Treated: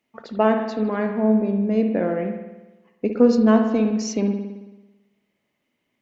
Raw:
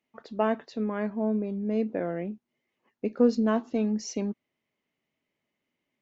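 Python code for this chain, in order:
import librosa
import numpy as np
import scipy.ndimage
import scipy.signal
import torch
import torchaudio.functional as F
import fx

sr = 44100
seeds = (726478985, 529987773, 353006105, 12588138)

y = fx.rev_spring(x, sr, rt60_s=1.1, pass_ms=(55,), chirp_ms=25, drr_db=5.0)
y = y * 10.0 ** (6.5 / 20.0)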